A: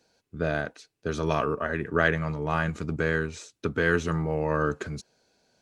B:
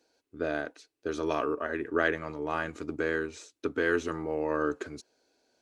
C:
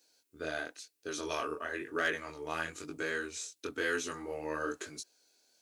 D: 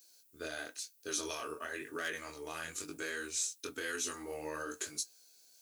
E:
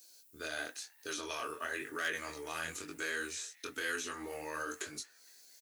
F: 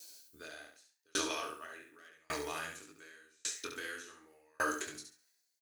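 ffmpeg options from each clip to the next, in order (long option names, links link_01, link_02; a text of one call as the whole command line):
ffmpeg -i in.wav -af "lowshelf=frequency=230:width_type=q:width=3:gain=-7,volume=-4.5dB" out.wav
ffmpeg -i in.wav -af "crystalizer=i=7.5:c=0,flanger=delay=19:depth=6.4:speed=1,asoftclip=type=hard:threshold=-15.5dB,volume=-6dB" out.wav
ffmpeg -i in.wav -af "alimiter=level_in=3.5dB:limit=-24dB:level=0:latency=1:release=120,volume=-3.5dB,flanger=delay=7.1:depth=4:regen=-63:speed=0.55:shape=triangular,aemphasis=mode=production:type=75kf,volume=1dB" out.wav
ffmpeg -i in.wav -filter_complex "[0:a]acrossover=split=820|3400[link_01][link_02][link_03];[link_01]alimiter=level_in=17dB:limit=-24dB:level=0:latency=1:release=214,volume=-17dB[link_04];[link_02]asplit=5[link_05][link_06][link_07][link_08][link_09];[link_06]adelay=232,afreqshift=130,volume=-22dB[link_10];[link_07]adelay=464,afreqshift=260,volume=-27.4dB[link_11];[link_08]adelay=696,afreqshift=390,volume=-32.7dB[link_12];[link_09]adelay=928,afreqshift=520,volume=-38.1dB[link_13];[link_05][link_10][link_11][link_12][link_13]amix=inputs=5:normalize=0[link_14];[link_03]acompressor=threshold=-48dB:ratio=6[link_15];[link_04][link_14][link_15]amix=inputs=3:normalize=0,volume=3.5dB" out.wav
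ffmpeg -i in.wav -filter_complex "[0:a]asplit=2[link_01][link_02];[link_02]aecho=0:1:69|138|207|276:0.631|0.215|0.0729|0.0248[link_03];[link_01][link_03]amix=inputs=2:normalize=0,aeval=exprs='val(0)*pow(10,-39*if(lt(mod(0.87*n/s,1),2*abs(0.87)/1000),1-mod(0.87*n/s,1)/(2*abs(0.87)/1000),(mod(0.87*n/s,1)-2*abs(0.87)/1000)/(1-2*abs(0.87)/1000))/20)':channel_layout=same,volume=7.5dB" out.wav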